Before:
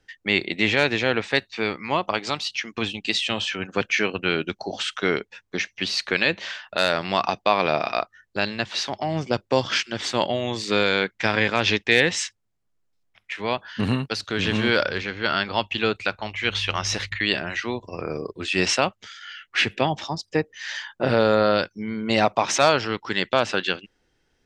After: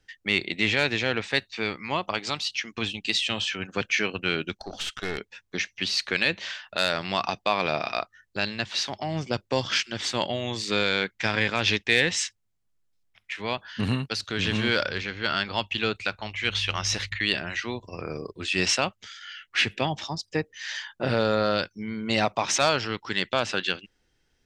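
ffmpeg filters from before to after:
-filter_complex "[0:a]asettb=1/sr,asplit=3[s0][s1][s2];[s0]atrim=end=4.574[s3];[s1]atrim=start=4.57:end=5.18,asetpts=PTS-STARTPTS,afade=t=in:d=0.004:c=qsin,afade=t=out:st=0.606:d=0.004:c=qsin,aeval=exprs='(tanh(10*val(0)+0.65)-tanh(0.65))/10':c=same[s4];[s2]atrim=start=5.176[s5];[s3][s4]acrossfade=d=0.004:c1=hsin:c2=qsin[s6];[s6][s5]acrossfade=d=0.004:c1=qsin:c2=hsin,equalizer=f=550:w=0.32:g=-5.5,acontrast=30,volume=0.562"

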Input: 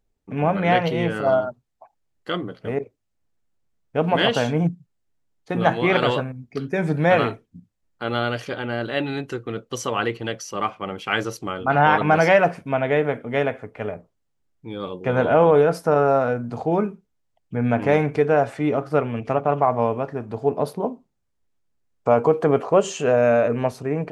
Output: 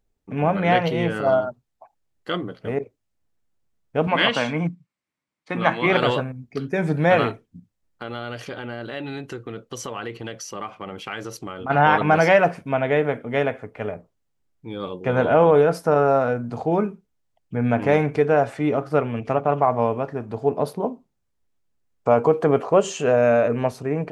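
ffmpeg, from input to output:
-filter_complex "[0:a]asettb=1/sr,asplit=3[s0][s1][s2];[s0]atrim=end=4.074[s3];[s1]atrim=start=4.07:end=5.86,asetpts=PTS-STARTPTS,afade=t=in:d=0.004:c=qsin,afade=t=out:st=1.786:d=0.004:c=qsin,highpass=180,equalizer=f=420:t=q:w=4:g=-8,equalizer=f=730:t=q:w=4:g=-4,equalizer=f=1100:t=q:w=4:g=6,equalizer=f=2200:t=q:w=4:g=9,equalizer=f=6700:t=q:w=4:g=-5,lowpass=f=9300:w=0.5412,lowpass=f=9300:w=1.3066[s4];[s2]atrim=start=5.856[s5];[s3][s4]acrossfade=d=0.004:c1=hsin:c2=qsin[s6];[s6][s5]acrossfade=d=0.004:c1=qsin:c2=hsin,asplit=3[s7][s8][s9];[s7]afade=t=out:st=7.31:d=0.02[s10];[s8]acompressor=threshold=0.0355:ratio=3:attack=3.2:release=140:knee=1:detection=peak,afade=t=in:st=7.31:d=0.02,afade=t=out:st=11.69:d=0.02[s11];[s9]afade=t=in:st=11.69:d=0.02[s12];[s10][s11][s12]amix=inputs=3:normalize=0"

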